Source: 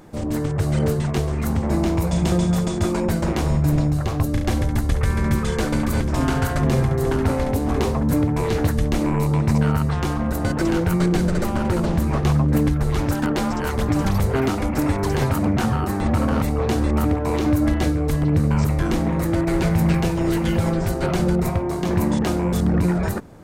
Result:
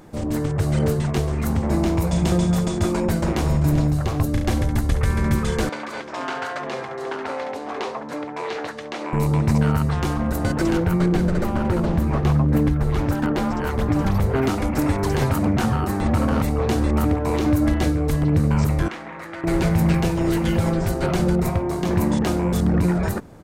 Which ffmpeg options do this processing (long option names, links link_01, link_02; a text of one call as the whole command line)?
ffmpeg -i in.wav -filter_complex "[0:a]asplit=2[link_01][link_02];[link_02]afade=type=in:start_time=3.06:duration=0.01,afade=type=out:start_time=3.48:duration=0.01,aecho=0:1:390|780|1170|1560:0.223872|0.100742|0.0453341|0.0204003[link_03];[link_01][link_03]amix=inputs=2:normalize=0,asettb=1/sr,asplit=3[link_04][link_05][link_06];[link_04]atrim=end=5.694[link_07];[link_05]atrim=start=5.69:end=9.13,asetpts=PTS-STARTPTS,afade=type=in:duration=0.004:curve=qsin,afade=type=out:start_time=3.436:duration=0.004:curve=qsin,highpass=560,lowpass=4500[link_08];[link_06]atrim=start=9.126[link_09];[link_07][link_08]acrossfade=duration=0.004:curve1=hsin:curve2=qsin[link_10];[link_10][link_09]acrossfade=duration=0.004:curve1=qsin:curve2=hsin,asettb=1/sr,asplit=3[link_11][link_12][link_13];[link_11]atrim=end=10.774[link_14];[link_12]atrim=start=10.77:end=14.43,asetpts=PTS-STARTPTS,afade=type=in:duration=0.004:curve=qsin,afade=type=out:start_time=3.656:duration=0.004:curve=qsin,equalizer=frequency=8500:width=0.41:gain=-7.5[link_15];[link_13]atrim=start=14.426[link_16];[link_14][link_15]acrossfade=duration=0.004:curve1=hsin:curve2=qsin[link_17];[link_17][link_16]acrossfade=duration=0.004:curve1=qsin:curve2=hsin,asettb=1/sr,asplit=3[link_18][link_19][link_20];[link_18]atrim=end=18.884[link_21];[link_19]atrim=start=18.88:end=19.44,asetpts=PTS-STARTPTS,afade=type=in:duration=0.004:curve=qsin,afade=type=out:start_time=0.556:duration=0.004:curve=qsin,bandpass=frequency=1800:width_type=q:width=1.1[link_22];[link_20]atrim=start=19.436[link_23];[link_21][link_22]acrossfade=duration=0.004:curve1=hsin:curve2=qsin[link_24];[link_24][link_23]acrossfade=duration=0.004:curve1=qsin:curve2=hsin" out.wav